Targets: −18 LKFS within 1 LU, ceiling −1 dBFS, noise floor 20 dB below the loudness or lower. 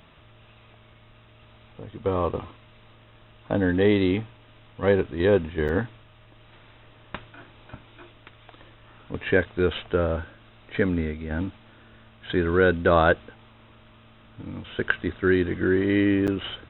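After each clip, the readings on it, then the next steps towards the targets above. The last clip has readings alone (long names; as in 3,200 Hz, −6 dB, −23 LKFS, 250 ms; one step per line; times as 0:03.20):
number of dropouts 2; longest dropout 8.3 ms; integrated loudness −24.0 LKFS; sample peak −5.0 dBFS; target loudness −18.0 LKFS
→ repair the gap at 0:05.68/0:16.27, 8.3 ms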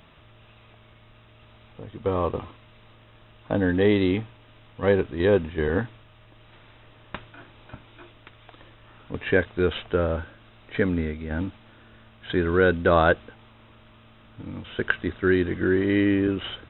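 number of dropouts 0; integrated loudness −24.0 LKFS; sample peak −5.0 dBFS; target loudness −18.0 LKFS
→ level +6 dB
brickwall limiter −1 dBFS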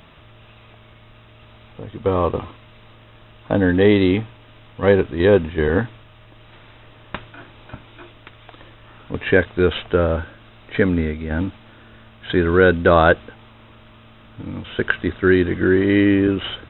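integrated loudness −18.5 LKFS; sample peak −1.0 dBFS; background noise floor −47 dBFS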